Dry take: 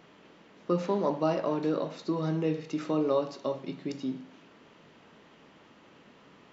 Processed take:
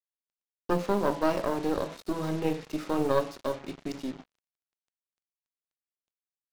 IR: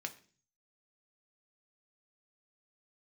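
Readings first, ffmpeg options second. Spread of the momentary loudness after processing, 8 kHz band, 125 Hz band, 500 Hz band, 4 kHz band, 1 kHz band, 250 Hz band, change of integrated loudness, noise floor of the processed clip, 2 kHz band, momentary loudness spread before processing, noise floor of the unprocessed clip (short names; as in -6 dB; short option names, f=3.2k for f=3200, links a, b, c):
11 LU, n/a, -1.5 dB, 0.0 dB, +2.5 dB, +3.0 dB, -0.5 dB, +0.5 dB, under -85 dBFS, +6.0 dB, 9 LU, -58 dBFS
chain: -filter_complex "[0:a]asplit=2[a][b];[b]bass=f=250:g=6,treble=f=4k:g=1[c];[1:a]atrim=start_sample=2205,adelay=25[d];[c][d]afir=irnorm=-1:irlink=0,volume=-15.5dB[e];[a][e]amix=inputs=2:normalize=0,aeval=exprs='0.188*(cos(1*acos(clip(val(0)/0.188,-1,1)))-cos(1*PI/2))+0.0841*(cos(2*acos(clip(val(0)/0.188,-1,1)))-cos(2*PI/2))+0.00531*(cos(5*acos(clip(val(0)/0.188,-1,1)))-cos(5*PI/2))+0.00473*(cos(6*acos(clip(val(0)/0.188,-1,1)))-cos(6*PI/2))+0.00841*(cos(7*acos(clip(val(0)/0.188,-1,1)))-cos(7*PI/2))':c=same,bandreject=f=166.5:t=h:w=4,bandreject=f=333:t=h:w=4,bandreject=f=499.5:t=h:w=4,bandreject=f=666:t=h:w=4,bandreject=f=832.5:t=h:w=4,bandreject=f=999:t=h:w=4,bandreject=f=1.1655k:t=h:w=4,bandreject=f=1.332k:t=h:w=4,bandreject=f=1.4985k:t=h:w=4,bandreject=f=1.665k:t=h:w=4,bandreject=f=1.8315k:t=h:w=4,bandreject=f=1.998k:t=h:w=4,bandreject=f=2.1645k:t=h:w=4,bandreject=f=2.331k:t=h:w=4,bandreject=f=2.4975k:t=h:w=4,bandreject=f=2.664k:t=h:w=4,acrusher=bits=6:mix=0:aa=0.5"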